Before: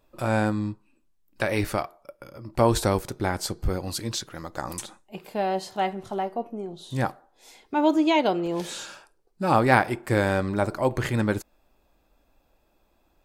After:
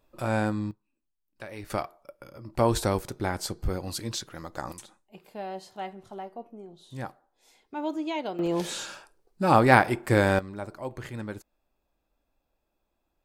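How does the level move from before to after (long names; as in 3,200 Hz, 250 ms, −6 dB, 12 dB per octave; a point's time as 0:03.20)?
−3 dB
from 0:00.71 −15.5 dB
from 0:01.70 −3 dB
from 0:04.72 −10.5 dB
from 0:08.39 +1 dB
from 0:10.39 −12 dB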